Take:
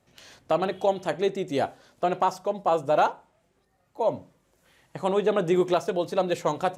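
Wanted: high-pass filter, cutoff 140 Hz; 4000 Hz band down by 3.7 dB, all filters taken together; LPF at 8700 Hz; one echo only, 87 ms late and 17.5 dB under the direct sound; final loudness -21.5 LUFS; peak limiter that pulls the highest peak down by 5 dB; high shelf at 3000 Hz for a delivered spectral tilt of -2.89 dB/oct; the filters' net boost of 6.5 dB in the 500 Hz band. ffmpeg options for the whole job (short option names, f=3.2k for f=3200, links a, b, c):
-af "highpass=140,lowpass=8.7k,equalizer=f=500:t=o:g=8.5,highshelf=f=3k:g=4.5,equalizer=f=4k:t=o:g=-8,alimiter=limit=-10.5dB:level=0:latency=1,aecho=1:1:87:0.133,volume=1dB"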